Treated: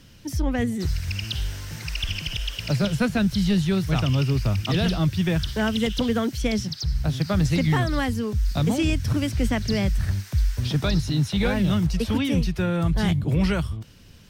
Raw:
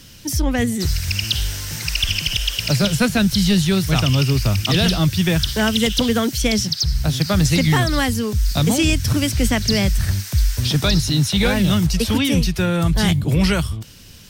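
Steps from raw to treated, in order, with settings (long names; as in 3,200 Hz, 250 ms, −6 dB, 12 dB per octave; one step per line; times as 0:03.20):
high-shelf EQ 3,400 Hz −11 dB
level −4.5 dB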